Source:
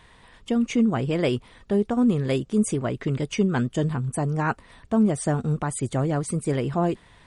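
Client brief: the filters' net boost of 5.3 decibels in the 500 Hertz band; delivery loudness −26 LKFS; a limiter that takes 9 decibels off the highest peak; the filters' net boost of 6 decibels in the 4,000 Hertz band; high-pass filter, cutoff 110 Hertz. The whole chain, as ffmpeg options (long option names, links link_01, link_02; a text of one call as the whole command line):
ffmpeg -i in.wav -af "highpass=110,equalizer=frequency=500:width_type=o:gain=6.5,equalizer=frequency=4000:width_type=o:gain=8.5,volume=0.5dB,alimiter=limit=-16dB:level=0:latency=1" out.wav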